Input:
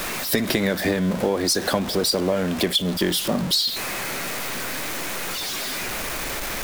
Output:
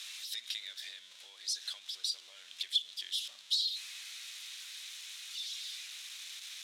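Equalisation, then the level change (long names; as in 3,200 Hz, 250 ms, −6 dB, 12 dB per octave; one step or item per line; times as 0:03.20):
four-pole ladder band-pass 4,400 Hz, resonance 55%
parametric band 4,500 Hz −7.5 dB 0.43 octaves
0.0 dB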